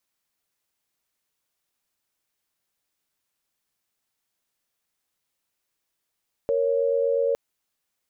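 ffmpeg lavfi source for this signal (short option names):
-f lavfi -i "aevalsrc='0.075*(sin(2*PI*466.16*t)+sin(2*PI*554.37*t))':d=0.86:s=44100"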